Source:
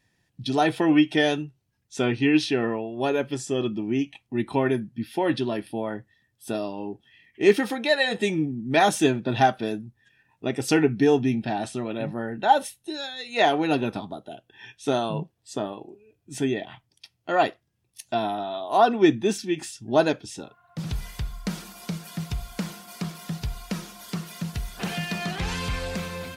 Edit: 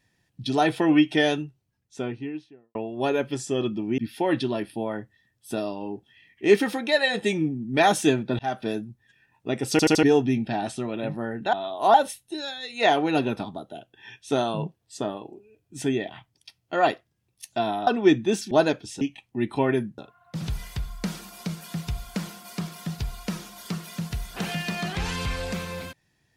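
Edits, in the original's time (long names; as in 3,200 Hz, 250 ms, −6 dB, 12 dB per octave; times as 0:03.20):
0:01.33–0:02.75: fade out and dull
0:03.98–0:04.95: move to 0:20.41
0:09.36–0:09.62: fade in
0:10.68: stutter in place 0.08 s, 4 plays
0:18.43–0:18.84: move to 0:12.50
0:19.48–0:19.91: remove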